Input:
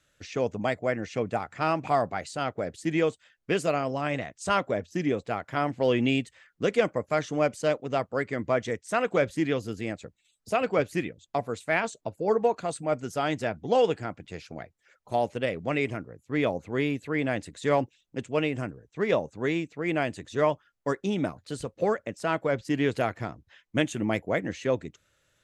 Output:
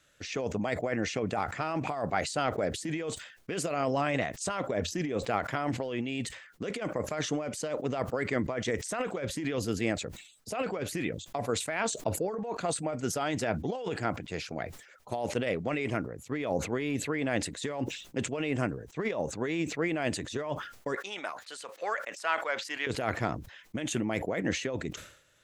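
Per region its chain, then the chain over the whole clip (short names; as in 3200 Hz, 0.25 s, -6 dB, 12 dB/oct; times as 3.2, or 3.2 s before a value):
20.96–22.87 HPF 1100 Hz + high shelf 3800 Hz -6.5 dB
whole clip: negative-ratio compressor -30 dBFS, ratio -1; low shelf 170 Hz -5 dB; sustainer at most 91 dB/s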